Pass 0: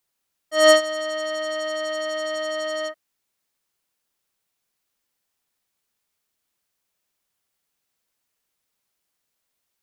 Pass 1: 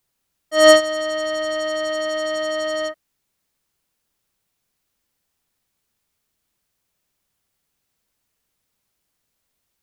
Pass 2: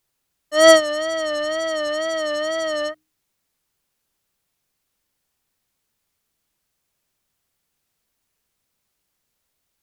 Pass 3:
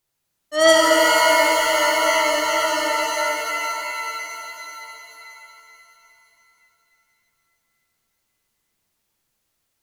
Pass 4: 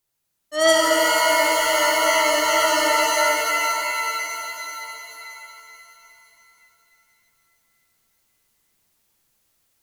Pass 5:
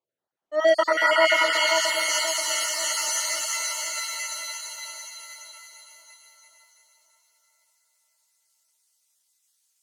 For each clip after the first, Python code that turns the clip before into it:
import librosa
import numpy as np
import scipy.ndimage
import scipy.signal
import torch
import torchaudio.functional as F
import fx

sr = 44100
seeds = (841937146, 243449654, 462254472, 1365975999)

y1 = fx.low_shelf(x, sr, hz=230.0, db=10.0)
y1 = y1 * librosa.db_to_amplitude(2.5)
y2 = fx.hum_notches(y1, sr, base_hz=60, count=5)
y2 = fx.wow_flutter(y2, sr, seeds[0], rate_hz=2.1, depth_cents=74.0)
y3 = fx.rev_shimmer(y2, sr, seeds[1], rt60_s=3.6, semitones=7, shimmer_db=-2, drr_db=-1.0)
y3 = y3 * librosa.db_to_amplitude(-3.0)
y4 = fx.high_shelf(y3, sr, hz=6800.0, db=4.5)
y4 = fx.rider(y4, sr, range_db=3, speed_s=0.5)
y5 = fx.spec_dropout(y4, sr, seeds[2], share_pct=37)
y5 = fx.filter_sweep_bandpass(y5, sr, from_hz=590.0, to_hz=7300.0, start_s=0.49, end_s=2.03, q=1.2)
y5 = fx.echo_split(y5, sr, split_hz=1200.0, low_ms=531, high_ms=336, feedback_pct=52, wet_db=-3.0)
y5 = y5 * librosa.db_to_amplitude(3.0)